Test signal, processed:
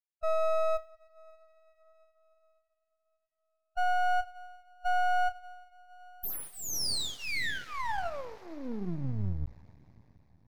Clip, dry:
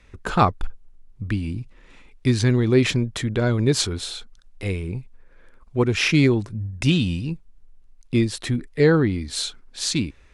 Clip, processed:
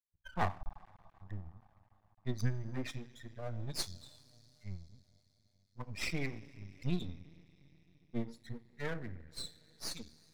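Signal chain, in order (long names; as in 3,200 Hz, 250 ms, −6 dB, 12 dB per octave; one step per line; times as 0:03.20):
spectral dynamics exaggerated over time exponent 3
in parallel at −6.5 dB: soft clipping −22.5 dBFS
on the sum: phaser with its sweep stopped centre 2,000 Hz, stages 8
coupled-rooms reverb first 0.42 s, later 4.6 s, from −18 dB, DRR 10 dB
half-wave rectification
level −7 dB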